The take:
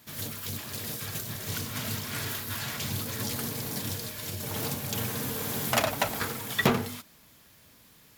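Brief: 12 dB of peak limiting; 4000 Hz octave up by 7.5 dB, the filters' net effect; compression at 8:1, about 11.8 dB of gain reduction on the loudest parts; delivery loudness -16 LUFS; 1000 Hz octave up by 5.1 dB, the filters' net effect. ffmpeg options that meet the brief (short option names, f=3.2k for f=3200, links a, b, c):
-af "equalizer=f=1k:t=o:g=6,equalizer=f=4k:t=o:g=9,acompressor=threshold=-29dB:ratio=8,volume=17.5dB,alimiter=limit=-7dB:level=0:latency=1"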